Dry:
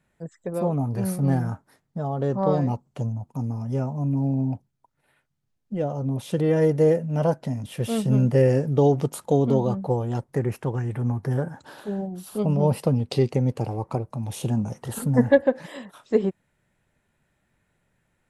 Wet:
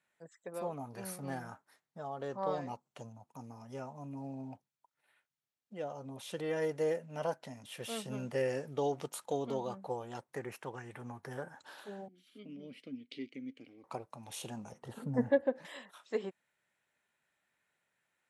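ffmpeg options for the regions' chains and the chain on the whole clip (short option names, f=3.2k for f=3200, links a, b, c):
-filter_complex "[0:a]asettb=1/sr,asplit=3[a][b][c];[a]atrim=end=12.084[d];[b]atrim=start=12.08:end=13.84,asetpts=PTS-STARTPTS,afade=t=in:d=0.004:c=qsin,afade=t=out:st=1.756:d=0.004:c=qsin,asplit=3[e][f][g];[e]bandpass=f=270:t=q:w=8,volume=0dB[h];[f]bandpass=f=2.29k:t=q:w=8,volume=-6dB[i];[g]bandpass=f=3.01k:t=q:w=8,volume=-9dB[j];[h][i][j]amix=inputs=3:normalize=0,acontrast=33[k];[c]atrim=start=13.836[l];[d][k]acrossfade=d=0.004:c1=hsin:c2=qsin[m];[m][l]acrossfade=d=0.004:c1=qsin:c2=hsin,asettb=1/sr,asplit=3[n][o][p];[n]atrim=end=14.724[q];[o]atrim=start=14.72:end=15.65,asetpts=PTS-STARTPTS,afade=t=in:d=0.004:c=qsin,afade=t=out:st=0.926:d=0.004:c=qsin,acrossover=split=4200[r][s];[s]acompressor=threshold=-46dB:ratio=4:attack=1:release=60[t];[r][t]amix=inputs=2:normalize=0,highpass=48,tiltshelf=f=630:g=9[u];[p]atrim=start=15.646[v];[q][u]acrossfade=d=0.004:c1=hsin:c2=qsin[w];[w][v]acrossfade=d=0.004:c1=qsin:c2=hsin,highpass=f=1.4k:p=1,highshelf=f=8.3k:g=-6.5,bandreject=f=4.9k:w=26,volume=-3.5dB"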